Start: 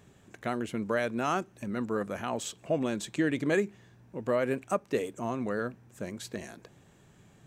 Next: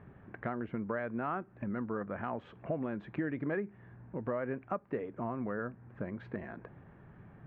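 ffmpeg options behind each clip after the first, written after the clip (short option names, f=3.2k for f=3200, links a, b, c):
-af "lowpass=f=1.8k:w=0.5412,lowpass=f=1.8k:w=1.3066,equalizer=f=440:t=o:w=1.9:g=-3.5,acompressor=threshold=-42dB:ratio=2.5,volume=5.5dB"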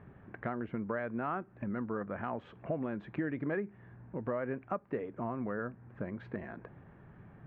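-af anull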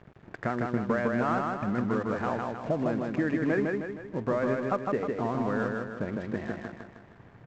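-af "aresample=16000,aeval=exprs='sgn(val(0))*max(abs(val(0))-0.00188,0)':c=same,aresample=44100,aecho=1:1:156|312|468|624|780|936:0.708|0.34|0.163|0.0783|0.0376|0.018,volume=7dB"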